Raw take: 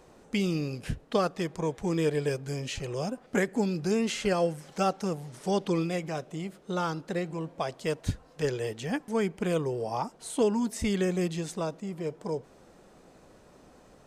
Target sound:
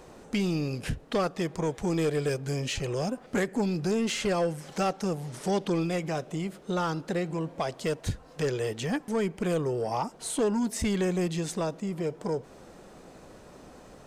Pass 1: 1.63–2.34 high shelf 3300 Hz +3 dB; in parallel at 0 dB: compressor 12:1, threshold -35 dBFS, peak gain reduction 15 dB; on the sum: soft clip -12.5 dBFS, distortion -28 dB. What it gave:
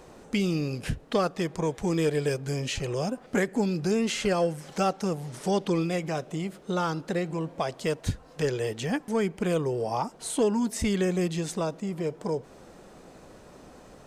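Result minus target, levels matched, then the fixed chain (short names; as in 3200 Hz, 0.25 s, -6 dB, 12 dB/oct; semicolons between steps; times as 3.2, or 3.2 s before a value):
soft clip: distortion -11 dB
1.63–2.34 high shelf 3300 Hz +3 dB; in parallel at 0 dB: compressor 12:1, threshold -35 dBFS, peak gain reduction 15 dB; on the sum: soft clip -20 dBFS, distortion -17 dB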